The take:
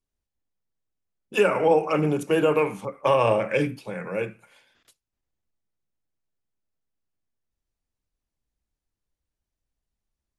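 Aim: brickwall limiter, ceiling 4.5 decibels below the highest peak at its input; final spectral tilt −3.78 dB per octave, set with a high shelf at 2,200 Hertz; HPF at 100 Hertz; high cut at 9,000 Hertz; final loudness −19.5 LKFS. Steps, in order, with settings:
high-pass filter 100 Hz
low-pass filter 9,000 Hz
high-shelf EQ 2,200 Hz −7.5 dB
level +6 dB
brickwall limiter −7.5 dBFS

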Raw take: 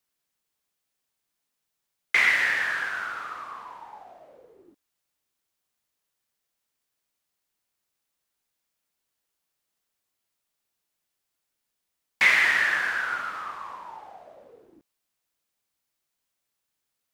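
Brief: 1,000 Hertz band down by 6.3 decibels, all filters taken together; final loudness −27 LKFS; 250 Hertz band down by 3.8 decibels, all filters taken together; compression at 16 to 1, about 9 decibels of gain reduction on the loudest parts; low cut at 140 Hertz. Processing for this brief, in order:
high-pass filter 140 Hz
parametric band 250 Hz −4 dB
parametric band 1,000 Hz −9 dB
downward compressor 16 to 1, threshold −26 dBFS
level +4 dB

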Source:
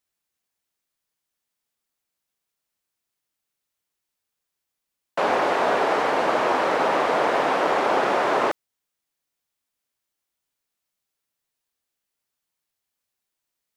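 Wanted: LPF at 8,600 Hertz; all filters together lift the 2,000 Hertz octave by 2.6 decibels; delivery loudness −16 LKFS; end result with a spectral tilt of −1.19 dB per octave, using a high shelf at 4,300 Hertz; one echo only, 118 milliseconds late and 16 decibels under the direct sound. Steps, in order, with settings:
low-pass filter 8,600 Hz
parametric band 2,000 Hz +4 dB
high-shelf EQ 4,300 Hz −3.5 dB
single-tap delay 118 ms −16 dB
level +4.5 dB

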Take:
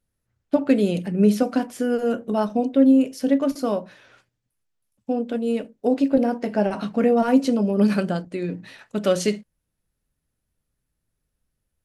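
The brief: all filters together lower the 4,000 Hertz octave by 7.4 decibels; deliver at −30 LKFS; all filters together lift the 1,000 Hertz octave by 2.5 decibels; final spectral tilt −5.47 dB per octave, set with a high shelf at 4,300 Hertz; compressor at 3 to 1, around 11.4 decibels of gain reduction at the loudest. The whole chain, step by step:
parametric band 1,000 Hz +4.5 dB
parametric band 4,000 Hz −8 dB
high-shelf EQ 4,300 Hz −5 dB
downward compressor 3 to 1, threshold −27 dBFS

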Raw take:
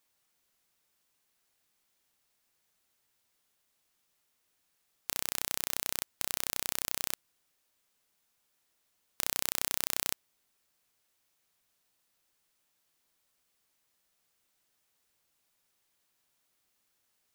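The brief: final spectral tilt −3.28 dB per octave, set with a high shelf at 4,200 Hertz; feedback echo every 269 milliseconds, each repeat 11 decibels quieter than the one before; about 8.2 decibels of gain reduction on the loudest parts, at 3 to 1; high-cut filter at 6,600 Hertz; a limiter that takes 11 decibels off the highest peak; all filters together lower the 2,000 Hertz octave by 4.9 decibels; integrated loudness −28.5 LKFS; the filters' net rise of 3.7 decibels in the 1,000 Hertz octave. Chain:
low-pass filter 6,600 Hz
parametric band 1,000 Hz +7 dB
parametric band 2,000 Hz −6.5 dB
high-shelf EQ 4,200 Hz −8.5 dB
downward compressor 3 to 1, threshold −45 dBFS
brickwall limiter −31.5 dBFS
repeating echo 269 ms, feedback 28%, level −11 dB
level +29 dB

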